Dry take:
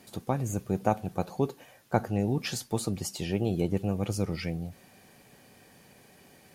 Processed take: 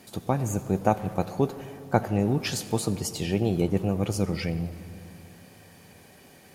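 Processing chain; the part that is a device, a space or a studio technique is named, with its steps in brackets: saturated reverb return (on a send at -10 dB: reverberation RT60 2.3 s, pre-delay 65 ms + saturation -29 dBFS, distortion -11 dB); on the sum: trim +3.5 dB

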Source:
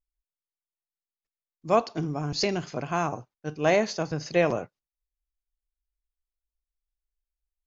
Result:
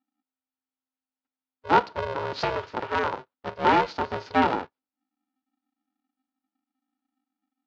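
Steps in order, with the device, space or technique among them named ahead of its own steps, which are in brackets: ring modulator pedal into a guitar cabinet (polarity switched at an audio rate 260 Hz; cabinet simulation 90–4300 Hz, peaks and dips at 130 Hz -6 dB, 280 Hz +5 dB, 520 Hz +6 dB, 920 Hz +8 dB, 1.4 kHz +6 dB); trim -2.5 dB

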